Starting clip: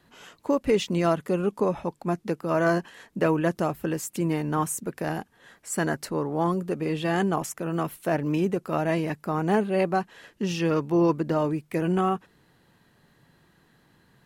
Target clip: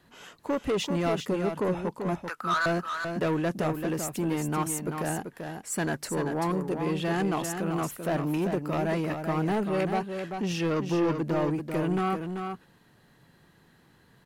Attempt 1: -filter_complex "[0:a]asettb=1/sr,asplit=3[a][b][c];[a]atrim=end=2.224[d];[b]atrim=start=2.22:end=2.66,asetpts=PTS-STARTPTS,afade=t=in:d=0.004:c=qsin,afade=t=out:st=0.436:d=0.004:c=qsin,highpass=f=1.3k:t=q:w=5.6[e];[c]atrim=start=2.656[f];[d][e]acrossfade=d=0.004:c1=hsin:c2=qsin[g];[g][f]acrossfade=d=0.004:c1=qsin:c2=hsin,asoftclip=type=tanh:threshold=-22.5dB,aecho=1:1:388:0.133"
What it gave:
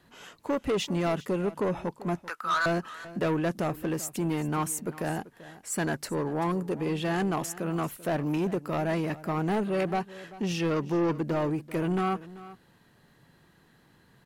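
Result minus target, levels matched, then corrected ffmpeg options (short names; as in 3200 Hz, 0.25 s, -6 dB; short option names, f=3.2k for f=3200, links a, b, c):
echo-to-direct -11 dB
-filter_complex "[0:a]asettb=1/sr,asplit=3[a][b][c];[a]atrim=end=2.224[d];[b]atrim=start=2.22:end=2.66,asetpts=PTS-STARTPTS,afade=t=in:d=0.004:c=qsin,afade=t=out:st=0.436:d=0.004:c=qsin,highpass=f=1.3k:t=q:w=5.6[e];[c]atrim=start=2.656[f];[d][e]acrossfade=d=0.004:c1=hsin:c2=qsin[g];[g][f]acrossfade=d=0.004:c1=qsin:c2=hsin,asoftclip=type=tanh:threshold=-22.5dB,aecho=1:1:388:0.473"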